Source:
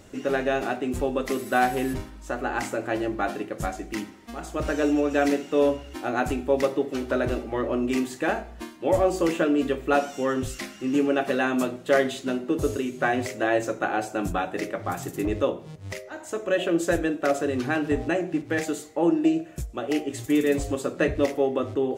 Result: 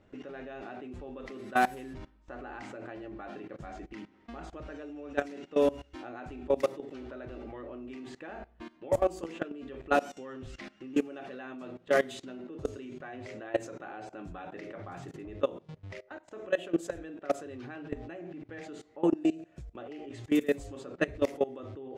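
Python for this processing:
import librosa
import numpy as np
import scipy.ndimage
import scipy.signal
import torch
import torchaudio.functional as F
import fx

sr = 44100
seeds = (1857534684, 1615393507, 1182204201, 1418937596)

y = fx.level_steps(x, sr, step_db=20)
y = fx.env_lowpass(y, sr, base_hz=2600.0, full_db=-22.0)
y = F.gain(torch.from_numpy(y), -2.5).numpy()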